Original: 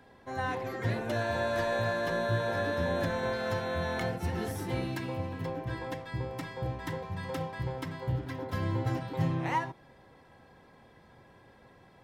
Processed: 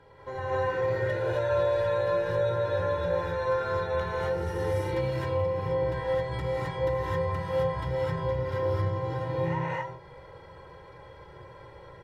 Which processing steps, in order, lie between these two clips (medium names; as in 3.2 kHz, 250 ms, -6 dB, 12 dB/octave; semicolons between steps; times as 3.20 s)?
low-pass 2.6 kHz 6 dB/octave; comb 2.1 ms, depth 90%; compression, threshold -35 dBFS, peak gain reduction 14 dB; gated-style reverb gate 290 ms rising, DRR -7.5 dB